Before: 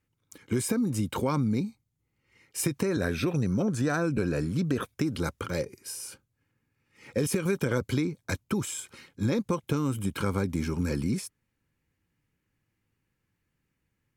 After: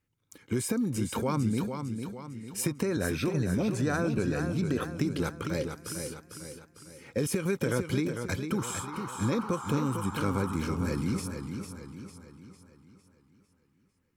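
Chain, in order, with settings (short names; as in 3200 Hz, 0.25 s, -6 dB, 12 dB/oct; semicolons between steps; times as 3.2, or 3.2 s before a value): 8.57–10.56 band noise 820–1400 Hz -40 dBFS; warbling echo 0.452 s, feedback 47%, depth 63 cents, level -7 dB; gain -2 dB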